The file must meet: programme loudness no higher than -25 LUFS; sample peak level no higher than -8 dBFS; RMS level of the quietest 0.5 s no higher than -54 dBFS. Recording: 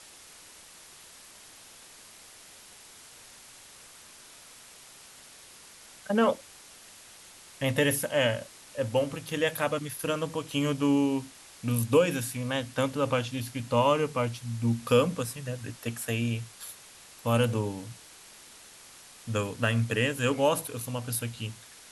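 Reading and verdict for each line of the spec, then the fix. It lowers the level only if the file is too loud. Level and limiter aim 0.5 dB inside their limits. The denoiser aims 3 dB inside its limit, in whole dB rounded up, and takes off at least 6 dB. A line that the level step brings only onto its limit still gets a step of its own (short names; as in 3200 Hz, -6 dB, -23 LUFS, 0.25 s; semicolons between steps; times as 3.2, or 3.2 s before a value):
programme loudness -28.5 LUFS: OK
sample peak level -10.5 dBFS: OK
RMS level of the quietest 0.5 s -51 dBFS: fail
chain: denoiser 6 dB, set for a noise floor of -51 dBFS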